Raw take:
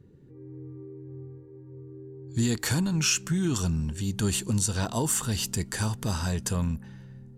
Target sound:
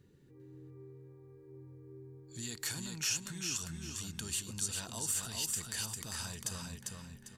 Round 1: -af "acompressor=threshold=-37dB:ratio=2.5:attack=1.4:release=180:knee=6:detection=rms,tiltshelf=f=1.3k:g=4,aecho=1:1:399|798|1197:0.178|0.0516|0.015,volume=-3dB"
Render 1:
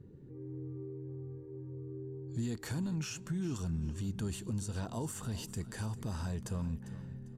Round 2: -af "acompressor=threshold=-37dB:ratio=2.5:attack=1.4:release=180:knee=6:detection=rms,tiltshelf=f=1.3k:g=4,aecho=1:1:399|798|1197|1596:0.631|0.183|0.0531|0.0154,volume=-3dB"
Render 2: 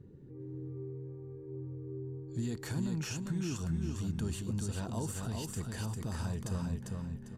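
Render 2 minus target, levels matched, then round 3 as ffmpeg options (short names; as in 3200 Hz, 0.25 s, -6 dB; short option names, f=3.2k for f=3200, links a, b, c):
1000 Hz band +4.0 dB
-af "acompressor=threshold=-37dB:ratio=2.5:attack=1.4:release=180:knee=6:detection=rms,tiltshelf=f=1.3k:g=-7,aecho=1:1:399|798|1197|1596:0.631|0.183|0.0531|0.0154,volume=-3dB"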